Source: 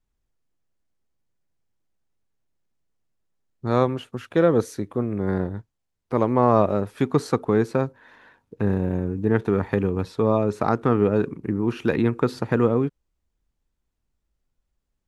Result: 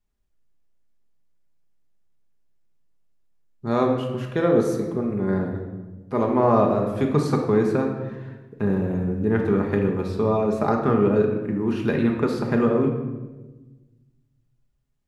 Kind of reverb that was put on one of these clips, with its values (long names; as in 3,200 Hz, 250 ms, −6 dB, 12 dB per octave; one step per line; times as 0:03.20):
rectangular room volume 760 cubic metres, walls mixed, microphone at 1.3 metres
level −2.5 dB